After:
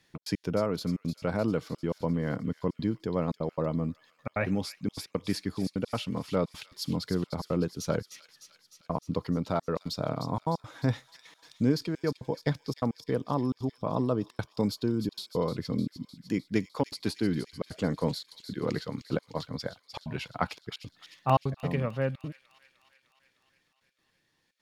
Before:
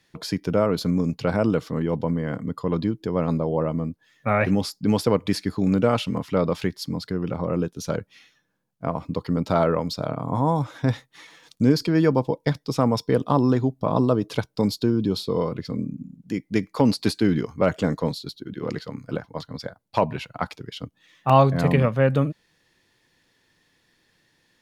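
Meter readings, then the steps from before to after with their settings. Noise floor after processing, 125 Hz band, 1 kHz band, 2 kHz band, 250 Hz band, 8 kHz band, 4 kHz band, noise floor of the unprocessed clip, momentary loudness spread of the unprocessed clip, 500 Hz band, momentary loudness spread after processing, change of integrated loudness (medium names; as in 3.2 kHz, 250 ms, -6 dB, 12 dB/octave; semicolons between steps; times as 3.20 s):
-73 dBFS, -8.0 dB, -8.5 dB, -7.5 dB, -7.5 dB, -5.0 dB, -6.0 dB, -67 dBFS, 12 LU, -8.5 dB, 8 LU, -8.0 dB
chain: gain riding within 5 dB 0.5 s; trance gate "xx.x.xxxx" 172 bpm -60 dB; feedback echo behind a high-pass 304 ms, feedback 66%, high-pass 3.4 kHz, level -8 dB; trim -6.5 dB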